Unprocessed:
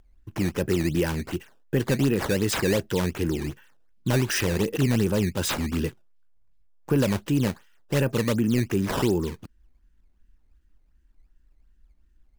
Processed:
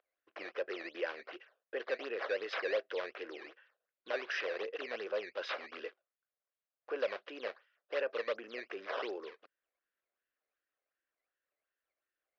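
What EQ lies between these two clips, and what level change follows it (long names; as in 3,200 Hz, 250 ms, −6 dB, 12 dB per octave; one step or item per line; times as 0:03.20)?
elliptic band-pass filter 520–5,400 Hz, stop band 50 dB
high-frequency loss of the air 300 metres
parametric band 900 Hz −11.5 dB 0.26 octaves
−4.0 dB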